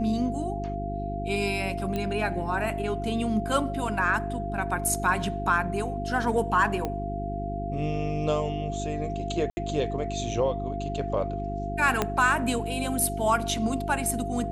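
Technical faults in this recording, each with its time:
hum 50 Hz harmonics 8 -33 dBFS
whine 690 Hz -33 dBFS
1.96 s: pop -17 dBFS
6.85 s: pop -16 dBFS
9.50–9.57 s: dropout 70 ms
12.02 s: pop -9 dBFS

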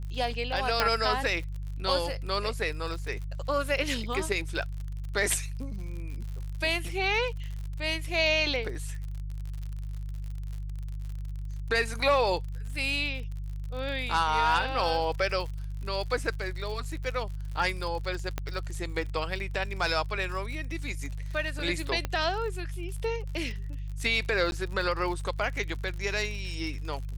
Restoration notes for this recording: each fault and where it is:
crackle 61 per s -36 dBFS
hum 50 Hz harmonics 3 -35 dBFS
0.80 s: pop -10 dBFS
18.38 s: pop -16 dBFS
22.05 s: pop -16 dBFS
24.51–24.52 s: dropout

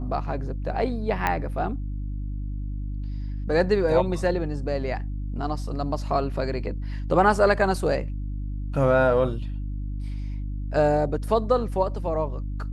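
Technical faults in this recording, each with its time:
hum 50 Hz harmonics 6 -30 dBFS
1.27 s: pop -10 dBFS

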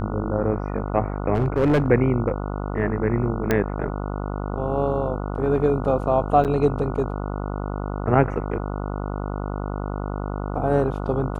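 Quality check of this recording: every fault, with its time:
buzz 50 Hz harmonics 29 -28 dBFS
1.34–1.86 s: clipped -14.5 dBFS
3.51 s: pop -7 dBFS
6.44–6.45 s: dropout 8.4 ms

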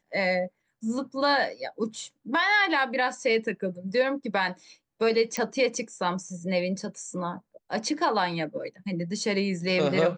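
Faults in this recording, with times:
5.37 s: pop -14 dBFS

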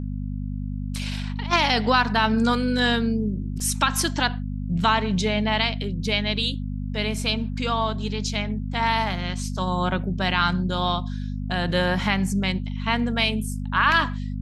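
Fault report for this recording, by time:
hum 50 Hz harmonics 5 -29 dBFS
3.60 s: dropout 3.8 ms

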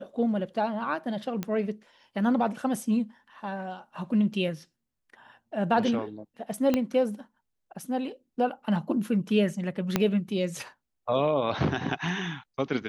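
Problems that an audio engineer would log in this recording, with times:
1.43 s: pop -17 dBFS
6.74 s: pop -12 dBFS
9.96 s: pop -8 dBFS

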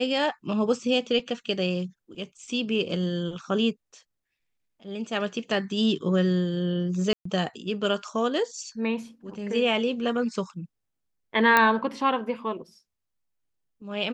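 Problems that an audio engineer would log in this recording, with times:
7.13–7.25 s: dropout 124 ms
11.57 s: pop -6 dBFS

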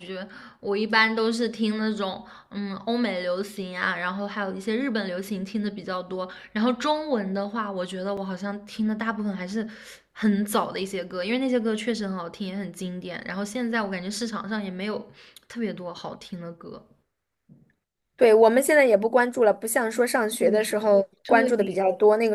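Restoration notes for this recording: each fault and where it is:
8.17 s: dropout 4.6 ms

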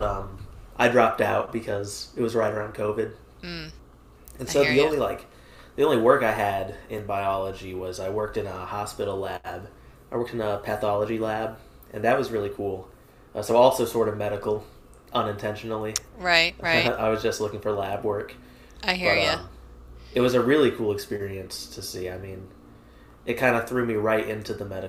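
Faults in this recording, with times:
6.98 s: dropout 3.3 ms

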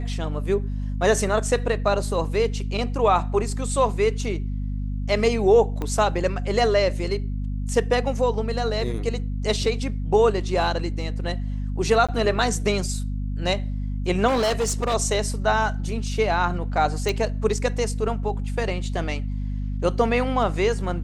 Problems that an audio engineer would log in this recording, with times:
hum 50 Hz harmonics 5 -27 dBFS
5.82 s: pop -16 dBFS
12.07–12.09 s: dropout 16 ms
14.27–14.95 s: clipped -18.5 dBFS
17.09 s: pop

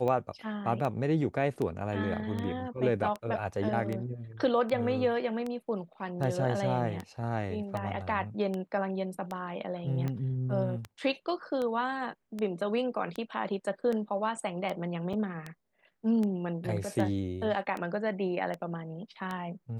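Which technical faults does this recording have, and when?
tick 78 rpm -22 dBFS
15.13–15.14 s: dropout 5.1 ms

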